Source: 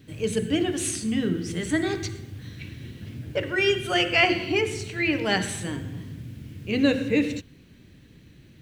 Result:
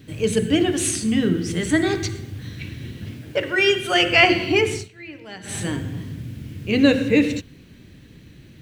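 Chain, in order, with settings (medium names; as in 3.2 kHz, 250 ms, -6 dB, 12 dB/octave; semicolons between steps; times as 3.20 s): 3.14–4.03 s: bass shelf 170 Hz -11.5 dB; 4.74–5.58 s: dip -19.5 dB, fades 0.15 s; trim +5.5 dB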